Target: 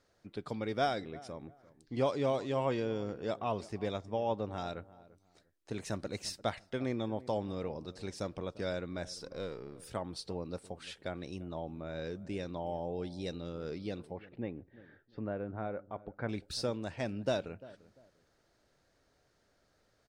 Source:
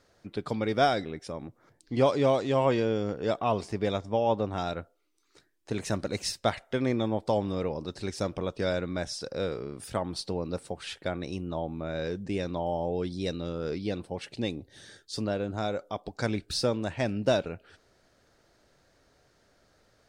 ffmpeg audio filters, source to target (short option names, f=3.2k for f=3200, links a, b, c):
-filter_complex "[0:a]asettb=1/sr,asplit=3[a][b][c];[a]atrim=end=9.174[d];[b]atrim=start=9.17:end=9.86,asetpts=PTS-STARTPTS,afade=t=in:d=0.004:c=qsin,afade=t=out:st=0.686:d=0.004:c=qsin,aeval=exprs='if(lt(val(0),0),0.708*val(0),val(0))':c=same[e];[c]atrim=start=9.856[f];[d][e]acrossfade=d=0.004:c1=hsin:c2=qsin[g];[g][f]acrossfade=d=0.004:c1=qsin:c2=hsin,asettb=1/sr,asplit=3[h][i][j];[h]atrim=end=14.114[k];[i]atrim=start=14.11:end=16.29,asetpts=PTS-STARTPTS,afade=t=in:d=0.004:c=qsin,afade=t=out:st=2.176:d=0.004:c=qsin,lowpass=f=2.1k:w=0.5412,lowpass=f=2.1k:w=1.3066[l];[j]atrim=start=16.286[m];[k][l]acrossfade=d=0.004:c1=hsin:c2=qsin[n];[n][m]acrossfade=d=0.004:c1=qsin:c2=hsin,asplit=2[o][p];[p]adelay=346,lowpass=f=1.1k:p=1,volume=-18dB,asplit=2[q][r];[r]adelay=346,lowpass=f=1.1k:p=1,volume=0.28[s];[o][q][s]amix=inputs=3:normalize=0,volume=-7.5dB"